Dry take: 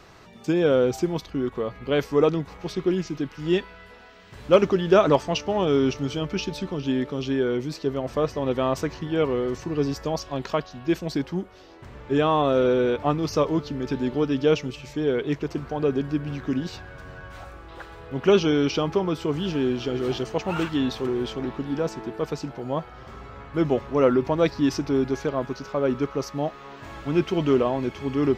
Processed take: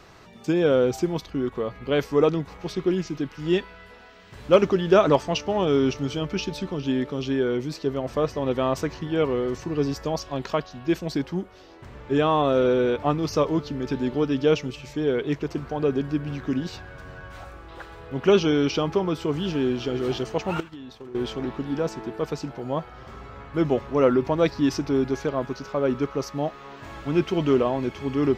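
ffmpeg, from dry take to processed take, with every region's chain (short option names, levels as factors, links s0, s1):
-filter_complex "[0:a]asettb=1/sr,asplit=3[s0][s1][s2];[s0]atrim=end=20.604[s3];[s1]atrim=start=20.6:end=21.15,asetpts=PTS-STARTPTS,afade=t=in:d=0.004:c=qsin,afade=t=out:st=0.546:d=0.004:c=qsin,agate=range=0.0224:threshold=0.0447:ratio=3:release=100:detection=peak,acompressor=threshold=0.0158:ratio=20:attack=3.2:release=140:knee=1:detection=peak[s4];[s2]atrim=start=21.146[s5];[s3][s4]acrossfade=d=0.004:c1=hsin:c2=qsin[s6];[s6][s5]acrossfade=d=0.004:c1=qsin:c2=hsin"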